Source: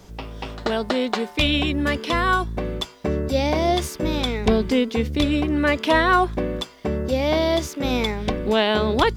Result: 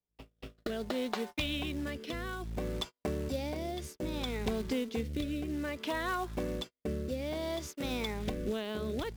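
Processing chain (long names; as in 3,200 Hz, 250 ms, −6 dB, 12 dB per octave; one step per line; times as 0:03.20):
noise gate −30 dBFS, range −38 dB
downward compressor 5 to 1, threshold −22 dBFS, peak gain reduction 9.5 dB
floating-point word with a short mantissa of 2 bits
rotating-speaker cabinet horn 0.6 Hz
level −7.5 dB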